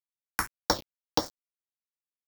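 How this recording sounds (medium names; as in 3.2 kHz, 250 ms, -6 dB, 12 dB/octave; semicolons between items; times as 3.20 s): a buzz of ramps at a fixed pitch in blocks of 8 samples; tremolo saw down 1.9 Hz, depth 45%; a quantiser's noise floor 6-bit, dither none; phasing stages 4, 1.8 Hz, lowest notch 560–2600 Hz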